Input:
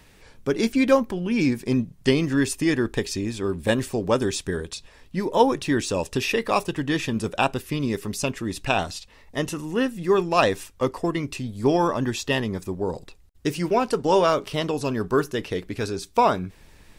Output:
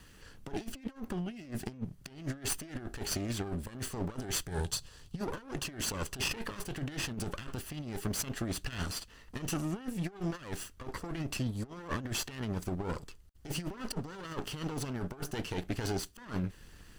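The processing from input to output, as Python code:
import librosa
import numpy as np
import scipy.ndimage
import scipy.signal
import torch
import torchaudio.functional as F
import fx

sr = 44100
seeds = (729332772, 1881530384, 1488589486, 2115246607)

y = fx.lower_of_two(x, sr, delay_ms=0.65)
y = fx.graphic_eq(y, sr, hz=(125, 250, 2000, 4000, 8000), db=(8, -5, -6, 4, 4), at=(4.48, 5.21))
y = fx.over_compress(y, sr, threshold_db=-29.0, ratio=-0.5)
y = F.gain(torch.from_numpy(y), -7.0).numpy()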